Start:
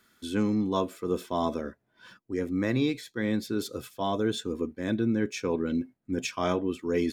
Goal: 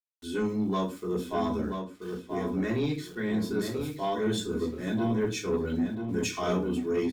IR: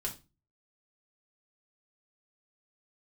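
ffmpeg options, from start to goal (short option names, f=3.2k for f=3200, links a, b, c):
-filter_complex "[1:a]atrim=start_sample=2205[a];[0:a][a]afir=irnorm=-1:irlink=0,asoftclip=type=tanh:threshold=-18dB,asettb=1/sr,asplit=3[b][c][d];[b]atrim=end=4.224[e];[c]atrim=start=4.22:end=6.79,asetpts=PTS-STARTPTS,afade=t=in:d=0.004:c=qsin,afade=t=out:st=2.566:d=0.004:c=qsin,highshelf=f=6.1k:g=7[f];[d]atrim=start=6.786[g];[e][f]acrossfade=d=0.004:c1=hsin:c2=qsin[h];[h][g]acrossfade=d=0.004:c1=qsin:c2=hsin,aeval=exprs='val(0)*gte(abs(val(0)),0.00335)':c=same,asplit=2[i][j];[j]adelay=981,lowpass=f=3.7k:p=1,volume=-6dB,asplit=2[k][l];[l]adelay=981,lowpass=f=3.7k:p=1,volume=0.24,asplit=2[m][n];[n]adelay=981,lowpass=f=3.7k:p=1,volume=0.24[o];[i][k][m][o]amix=inputs=4:normalize=0,volume=-2.5dB"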